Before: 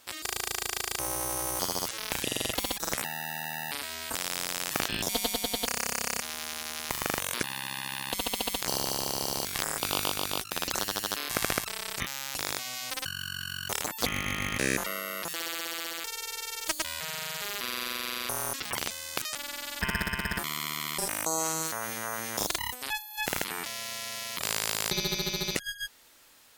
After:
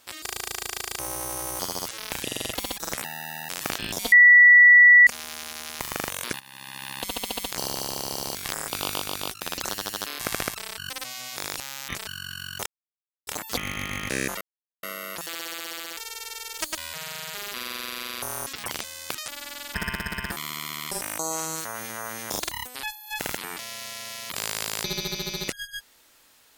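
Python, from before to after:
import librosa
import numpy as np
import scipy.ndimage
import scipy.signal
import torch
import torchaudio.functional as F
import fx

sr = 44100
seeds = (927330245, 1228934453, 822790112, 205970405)

y = fx.edit(x, sr, fx.cut(start_s=3.49, length_s=1.1),
    fx.bleep(start_s=5.22, length_s=0.95, hz=1950.0, db=-9.0),
    fx.fade_in_from(start_s=7.5, length_s=0.53, floor_db=-16.0),
    fx.reverse_span(start_s=11.88, length_s=1.29),
    fx.insert_silence(at_s=13.76, length_s=0.61),
    fx.insert_silence(at_s=14.9, length_s=0.42), tone=tone)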